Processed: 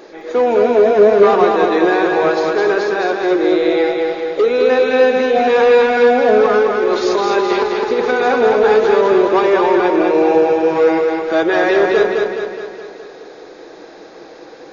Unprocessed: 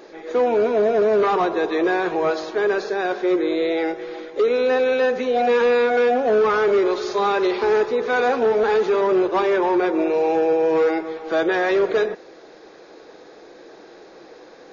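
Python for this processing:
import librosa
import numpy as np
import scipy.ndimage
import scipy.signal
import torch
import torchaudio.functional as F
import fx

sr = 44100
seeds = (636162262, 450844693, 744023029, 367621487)

y = fx.over_compress(x, sr, threshold_db=-21.0, ratio=-0.5, at=(6.46, 8.21))
y = fx.echo_feedback(y, sr, ms=210, feedback_pct=56, wet_db=-3.5)
y = y * 10.0 ** (4.5 / 20.0)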